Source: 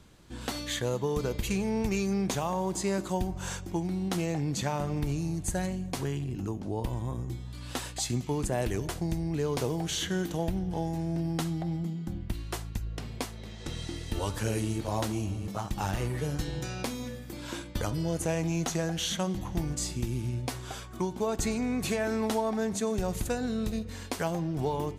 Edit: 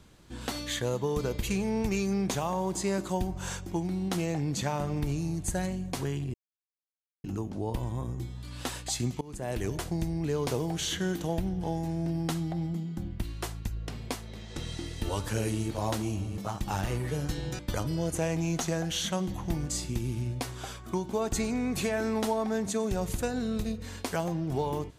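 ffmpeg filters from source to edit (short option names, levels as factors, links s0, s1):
-filter_complex "[0:a]asplit=4[s0][s1][s2][s3];[s0]atrim=end=6.34,asetpts=PTS-STARTPTS,afade=t=out:st=6.336:d=0.004:c=hsin,apad=pad_dur=0.9[s4];[s1]atrim=start=6.34:end=8.31,asetpts=PTS-STARTPTS,afade=t=in:d=0.004:c=hsin,afade=t=out:st=1.966:d=0.004:c=hsin:silence=0.0707946[s5];[s2]atrim=start=8.31:end=16.692,asetpts=PTS-STARTPTS,afade=t=in:d=0.47:silence=0.0707946[s6];[s3]atrim=start=17.658[s7];[s4][s5][s6]concat=n=3:v=0:a=1[s8];[s8][s7]acrossfade=d=0.004:c1=hsin:c2=hsin"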